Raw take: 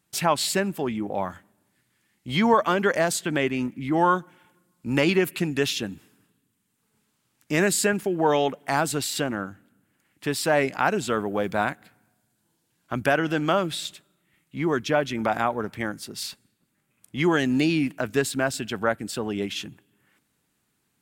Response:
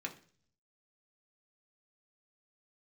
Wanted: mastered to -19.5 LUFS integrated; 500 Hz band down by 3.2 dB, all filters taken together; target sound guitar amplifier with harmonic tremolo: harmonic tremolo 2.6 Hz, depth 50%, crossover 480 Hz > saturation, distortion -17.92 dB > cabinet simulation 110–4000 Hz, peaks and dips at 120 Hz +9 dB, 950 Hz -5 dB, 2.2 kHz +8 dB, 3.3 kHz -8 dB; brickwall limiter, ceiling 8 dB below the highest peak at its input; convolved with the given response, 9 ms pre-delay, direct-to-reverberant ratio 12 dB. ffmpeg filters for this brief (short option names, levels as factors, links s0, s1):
-filter_complex "[0:a]equalizer=f=500:t=o:g=-4,alimiter=limit=0.178:level=0:latency=1,asplit=2[s0][s1];[1:a]atrim=start_sample=2205,adelay=9[s2];[s1][s2]afir=irnorm=-1:irlink=0,volume=0.237[s3];[s0][s3]amix=inputs=2:normalize=0,acrossover=split=480[s4][s5];[s4]aeval=exprs='val(0)*(1-0.5/2+0.5/2*cos(2*PI*2.6*n/s))':c=same[s6];[s5]aeval=exprs='val(0)*(1-0.5/2-0.5/2*cos(2*PI*2.6*n/s))':c=same[s7];[s6][s7]amix=inputs=2:normalize=0,asoftclip=threshold=0.0944,highpass=110,equalizer=f=120:t=q:w=4:g=9,equalizer=f=950:t=q:w=4:g=-5,equalizer=f=2200:t=q:w=4:g=8,equalizer=f=3300:t=q:w=4:g=-8,lowpass=f=4000:w=0.5412,lowpass=f=4000:w=1.3066,volume=3.98"